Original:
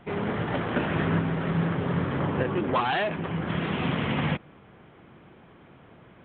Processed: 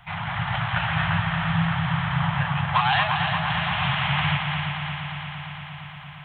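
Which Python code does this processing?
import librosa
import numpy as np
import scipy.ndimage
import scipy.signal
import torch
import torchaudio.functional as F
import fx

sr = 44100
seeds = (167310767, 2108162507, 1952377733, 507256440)

p1 = scipy.signal.sosfilt(scipy.signal.ellip(3, 1.0, 60, [150.0, 780.0], 'bandstop', fs=sr, output='sos'), x)
p2 = fx.high_shelf(p1, sr, hz=3400.0, db=8.0)
p3 = p2 + fx.echo_heads(p2, sr, ms=115, heads='second and third', feedback_pct=73, wet_db=-7.0, dry=0)
y = F.gain(torch.from_numpy(p3), 4.5).numpy()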